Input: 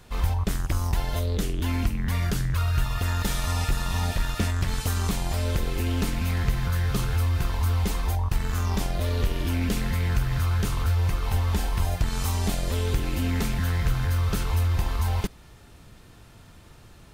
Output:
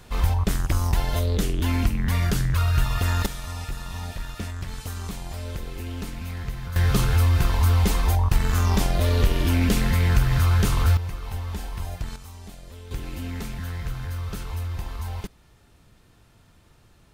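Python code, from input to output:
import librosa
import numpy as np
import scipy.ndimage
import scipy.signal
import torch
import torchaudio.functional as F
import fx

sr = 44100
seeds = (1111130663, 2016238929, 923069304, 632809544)

y = fx.gain(x, sr, db=fx.steps((0.0, 3.0), (3.26, -7.0), (6.76, 5.0), (10.97, -6.5), (12.16, -16.0), (12.91, -6.5)))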